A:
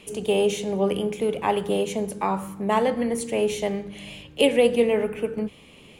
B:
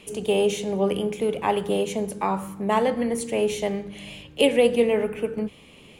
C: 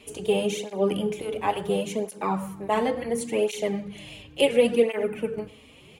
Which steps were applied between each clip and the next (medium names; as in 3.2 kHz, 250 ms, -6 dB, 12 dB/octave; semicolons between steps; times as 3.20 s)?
no audible change
speakerphone echo 100 ms, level -18 dB; cancelling through-zero flanger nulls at 0.71 Hz, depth 6.1 ms; trim +1 dB